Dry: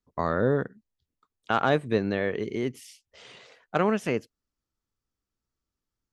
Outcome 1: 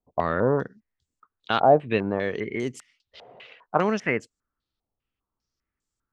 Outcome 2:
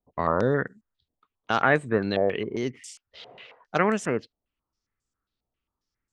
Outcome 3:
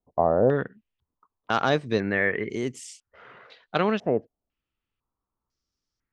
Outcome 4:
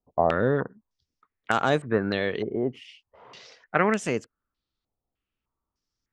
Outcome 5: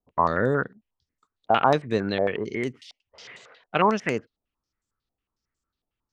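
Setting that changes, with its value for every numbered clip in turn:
stepped low-pass, rate: 5, 7.4, 2, 3.3, 11 Hz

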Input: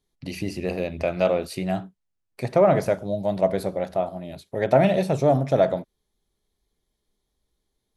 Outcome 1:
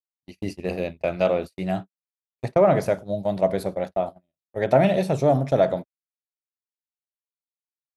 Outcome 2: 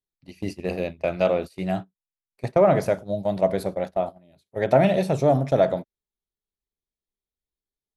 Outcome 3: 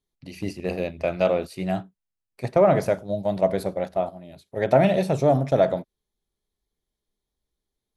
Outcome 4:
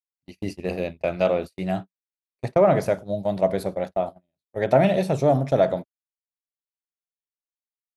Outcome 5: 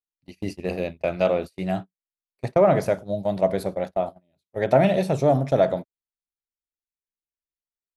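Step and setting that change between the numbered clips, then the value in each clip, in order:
gate, range: -59, -19, -7, -46, -32 dB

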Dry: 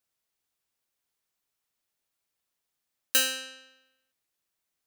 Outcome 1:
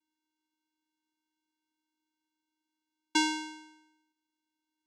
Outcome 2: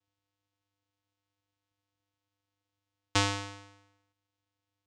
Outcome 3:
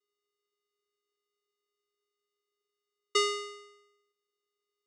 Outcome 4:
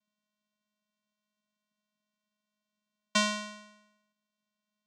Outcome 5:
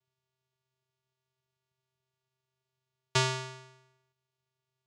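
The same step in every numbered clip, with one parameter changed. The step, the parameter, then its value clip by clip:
vocoder, frequency: 310, 100, 410, 210, 130 Hz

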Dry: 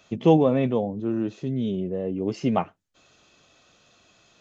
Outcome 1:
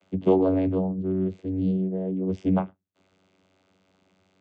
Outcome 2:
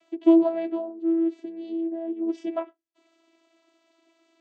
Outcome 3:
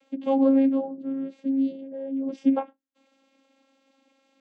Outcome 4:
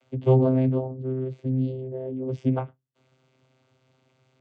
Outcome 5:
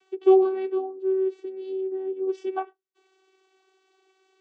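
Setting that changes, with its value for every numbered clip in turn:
vocoder, frequency: 94, 330, 270, 130, 380 Hz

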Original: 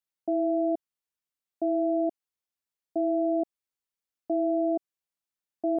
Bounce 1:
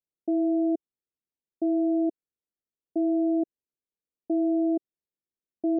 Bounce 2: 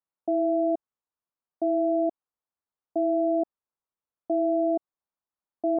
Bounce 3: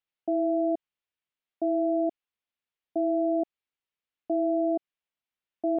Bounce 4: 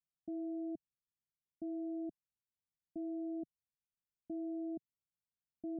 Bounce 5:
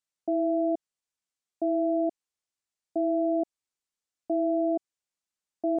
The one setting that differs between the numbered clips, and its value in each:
synth low-pass, frequency: 400, 1100, 3000, 150, 7800 Hz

